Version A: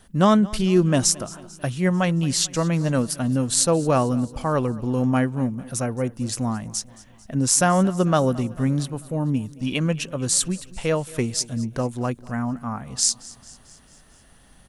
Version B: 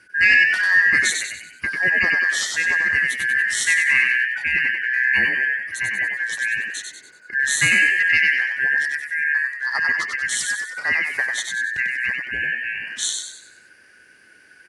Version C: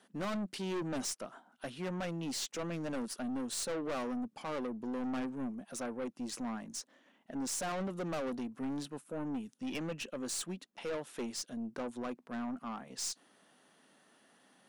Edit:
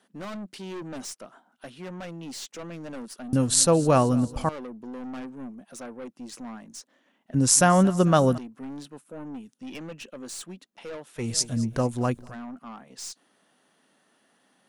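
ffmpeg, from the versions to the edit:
-filter_complex "[0:a]asplit=3[a][b][c];[2:a]asplit=4[d][e][f][g];[d]atrim=end=3.332[h];[a]atrim=start=3.328:end=4.492[i];[e]atrim=start=4.488:end=7.342[j];[b]atrim=start=7.338:end=8.382[k];[f]atrim=start=8.378:end=11.31[l];[c]atrim=start=11.15:end=12.36[m];[g]atrim=start=12.2[n];[h][i]acrossfade=d=0.004:c1=hsin:c2=hsin[o];[o][j]acrossfade=d=0.004:c1=hsin:c2=hsin[p];[p][k]acrossfade=d=0.004:c1=hsin:c2=hsin[q];[q][l]acrossfade=d=0.004:c1=hsin:c2=hsin[r];[r][m]acrossfade=d=0.16:c1=tri:c2=tri[s];[s][n]acrossfade=d=0.16:c1=tri:c2=tri"

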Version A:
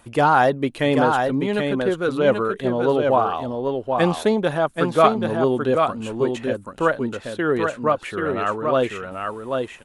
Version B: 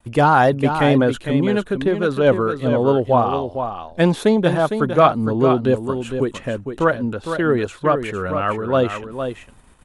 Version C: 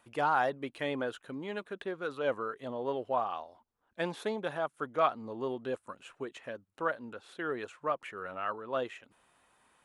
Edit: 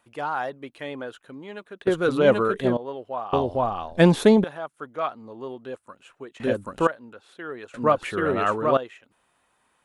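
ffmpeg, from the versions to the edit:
-filter_complex "[0:a]asplit=3[a][b][c];[2:a]asplit=5[d][e][f][g][h];[d]atrim=end=1.872[i];[a]atrim=start=1.868:end=2.772[j];[e]atrim=start=2.768:end=3.332[k];[1:a]atrim=start=3.328:end=4.442[l];[f]atrim=start=4.438:end=6.402[m];[b]atrim=start=6.398:end=6.872[n];[g]atrim=start=6.868:end=7.742[o];[c]atrim=start=7.738:end=8.772[p];[h]atrim=start=8.768[q];[i][j]acrossfade=d=0.004:c1=hsin:c2=hsin[r];[r][k]acrossfade=d=0.004:c1=hsin:c2=hsin[s];[s][l]acrossfade=d=0.004:c1=hsin:c2=hsin[t];[t][m]acrossfade=d=0.004:c1=hsin:c2=hsin[u];[u][n]acrossfade=d=0.004:c1=hsin:c2=hsin[v];[v][o]acrossfade=d=0.004:c1=hsin:c2=hsin[w];[w][p]acrossfade=d=0.004:c1=hsin:c2=hsin[x];[x][q]acrossfade=d=0.004:c1=hsin:c2=hsin"

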